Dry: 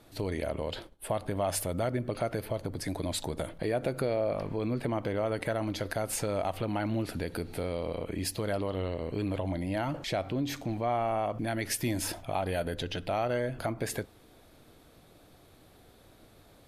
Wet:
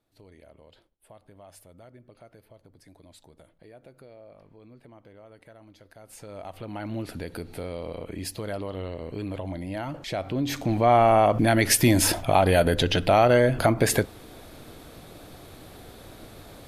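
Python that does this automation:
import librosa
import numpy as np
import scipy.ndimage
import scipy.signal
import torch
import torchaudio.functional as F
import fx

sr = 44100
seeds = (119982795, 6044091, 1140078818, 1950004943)

y = fx.gain(x, sr, db=fx.line((5.9, -19.5), (6.31, -10.0), (6.98, -1.0), (10.01, -1.0), (10.96, 12.0)))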